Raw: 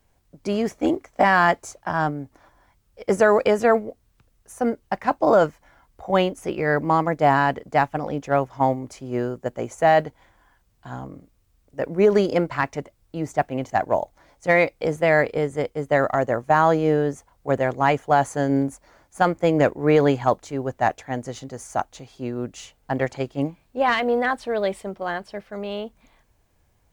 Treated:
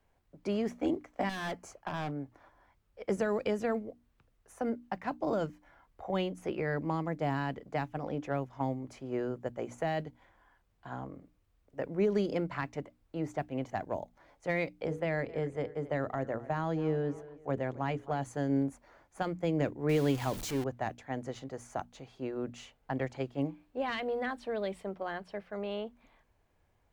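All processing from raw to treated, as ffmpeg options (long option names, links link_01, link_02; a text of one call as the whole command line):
ffmpeg -i in.wav -filter_complex "[0:a]asettb=1/sr,asplit=3[link_01][link_02][link_03];[link_01]atrim=end=1.294[link_04];[link_02]atrim=start=1.29:end=2.15,asetpts=PTS-STARTPTS,afade=type=in:duration=0.004:curve=qsin,afade=type=out:start_time=0.856:duration=0.004:curve=qsin,bandreject=frequency=3700:width=5.5,asoftclip=type=hard:threshold=-23dB[link_05];[link_03]atrim=start=2.146[link_06];[link_04][link_05]acrossfade=duration=0.004:curve1=hsin:curve2=qsin[link_07];[link_07][link_06]acrossfade=duration=0.004:curve1=qsin:curve2=hsin,asettb=1/sr,asplit=3[link_08][link_09][link_10];[link_08]atrim=end=14.814[link_11];[link_09]atrim=start=14.81:end=18.23,asetpts=PTS-STARTPTS,afade=type=in:duration=0.004:curve=qsin,afade=type=out:start_time=3.416:duration=0.004:curve=qsin,highshelf=frequency=3700:gain=-6,bandreject=frequency=60:width_type=h:width=6,bandreject=frequency=120:width_type=h:width=6,bandreject=frequency=180:width_type=h:width=6,bandreject=frequency=240:width_type=h:width=6,bandreject=frequency=300:width_type=h:width=6,bandreject=frequency=360:width_type=h:width=6,bandreject=frequency=420:width_type=h:width=6,bandreject=frequency=480:width_type=h:width=6,aecho=1:1:258|516:0.0841|0.0244,atrim=end_sample=150822[link_12];[link_10]atrim=start=18.226[link_13];[link_11][link_12]acrossfade=duration=0.004:curve1=hsin:curve2=qsin[link_14];[link_14][link_13]acrossfade=duration=0.004:curve1=qsin:curve2=hsin,asettb=1/sr,asplit=3[link_15][link_16][link_17];[link_15]atrim=end=19.894[link_18];[link_16]atrim=start=19.89:end=20.64,asetpts=PTS-STARTPTS,afade=type=in:duration=0.004:curve=qsin,afade=type=out:start_time=0.746:duration=0.004:curve=qsin,aeval=exprs='val(0)+0.5*0.0473*sgn(val(0))':channel_layout=same,highshelf=frequency=4200:gain=8[link_19];[link_17]atrim=start=20.636[link_20];[link_18][link_19]acrossfade=duration=0.004:curve1=hsin:curve2=qsin[link_21];[link_21][link_20]acrossfade=duration=0.004:curve1=qsin:curve2=hsin,bass=frequency=250:gain=-3,treble=frequency=4000:gain=-10,bandreject=frequency=60:width_type=h:width=6,bandreject=frequency=120:width_type=h:width=6,bandreject=frequency=180:width_type=h:width=6,bandreject=frequency=240:width_type=h:width=6,bandreject=frequency=300:width_type=h:width=6,acrossover=split=310|3000[link_22][link_23][link_24];[link_23]acompressor=threshold=-30dB:ratio=5[link_25];[link_22][link_25][link_24]amix=inputs=3:normalize=0,volume=-5dB" out.wav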